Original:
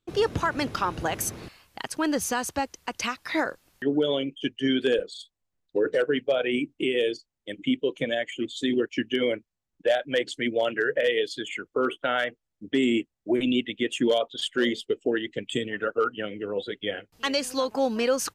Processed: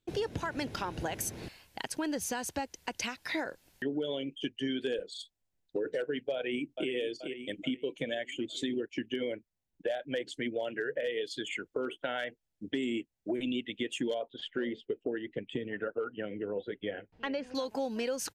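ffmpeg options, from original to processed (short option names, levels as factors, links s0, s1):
-filter_complex "[0:a]asplit=2[s0][s1];[s1]afade=t=in:st=6.34:d=0.01,afade=t=out:st=6.9:d=0.01,aecho=0:1:430|860|1290|1720|2150:0.281838|0.140919|0.0704596|0.0352298|0.0176149[s2];[s0][s2]amix=inputs=2:normalize=0,asettb=1/sr,asplit=3[s3][s4][s5];[s3]atrim=end=8.684[s6];[s4]atrim=start=8.68:end=11.21,asetpts=PTS-STARTPTS,afade=t=in:d=0.004:c=qsin,afade=t=out:st=2.526:d=0.004:c=qsin,equalizer=f=5400:w=0.3:g=-3.5[s7];[s5]atrim=start=11.206[s8];[s6][s7]acrossfade=d=0.004:c1=hsin:c2=qsin[s9];[s9][s8]acrossfade=d=0.004:c1=qsin:c2=hsin,asettb=1/sr,asplit=3[s10][s11][s12];[s10]atrim=end=14.144[s13];[s11]atrim=start=14.14:end=17.55,asetpts=PTS-STARTPTS,afade=t=in:d=0.004:c=qsin,afade=t=out:st=3.406:d=0.004:c=qsin,lowpass=1900[s14];[s12]atrim=start=17.546[s15];[s13][s14]acrossfade=d=0.004:c1=hsin:c2=qsin[s16];[s16][s15]acrossfade=d=0.004:c1=qsin:c2=hsin,equalizer=f=1200:t=o:w=0.27:g=-11,acompressor=threshold=0.0251:ratio=3,volume=0.891"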